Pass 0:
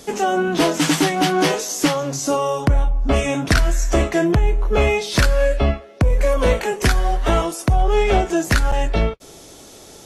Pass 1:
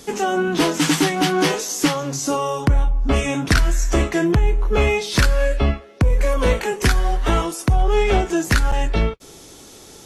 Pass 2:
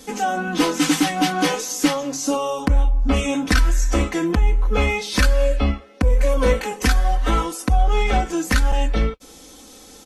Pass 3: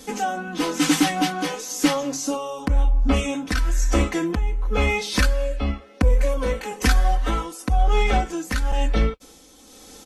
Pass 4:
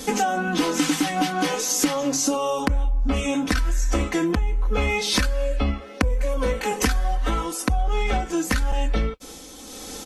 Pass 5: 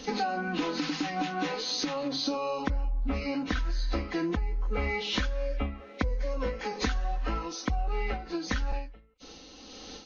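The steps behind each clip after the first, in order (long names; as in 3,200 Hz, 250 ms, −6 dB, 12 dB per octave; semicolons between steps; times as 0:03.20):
parametric band 630 Hz −6.5 dB 0.41 octaves
comb filter 3.9 ms, depth 87%; level −3.5 dB
amplitude tremolo 1 Hz, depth 55%
downward compressor 10 to 1, threshold −27 dBFS, peak gain reduction 15 dB; level +8.5 dB
hearing-aid frequency compression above 1,900 Hz 1.5 to 1; every ending faded ahead of time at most 110 dB per second; level −7.5 dB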